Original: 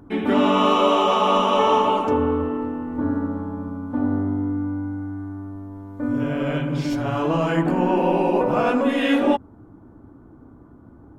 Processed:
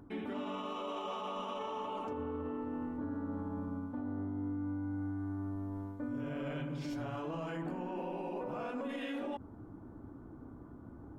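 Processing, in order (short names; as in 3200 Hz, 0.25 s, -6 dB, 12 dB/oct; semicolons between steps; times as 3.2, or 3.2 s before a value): reverse; compressor 5:1, threshold -30 dBFS, peak gain reduction 15 dB; reverse; limiter -27.5 dBFS, peak gain reduction 9 dB; gain -4 dB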